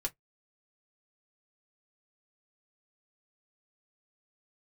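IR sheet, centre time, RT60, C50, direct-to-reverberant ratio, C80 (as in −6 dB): 6 ms, 0.10 s, 29.5 dB, 0.0 dB, 45.5 dB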